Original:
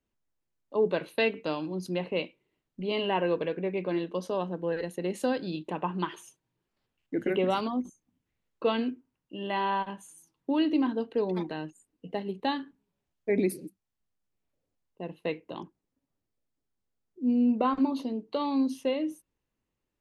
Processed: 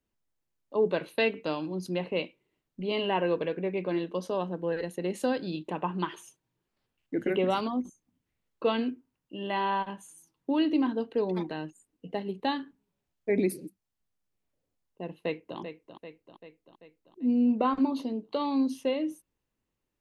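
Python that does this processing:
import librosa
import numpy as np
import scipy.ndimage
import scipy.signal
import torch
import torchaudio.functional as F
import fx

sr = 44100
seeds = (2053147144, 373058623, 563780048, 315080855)

y = fx.echo_throw(x, sr, start_s=15.18, length_s=0.4, ms=390, feedback_pct=60, wet_db=-9.5)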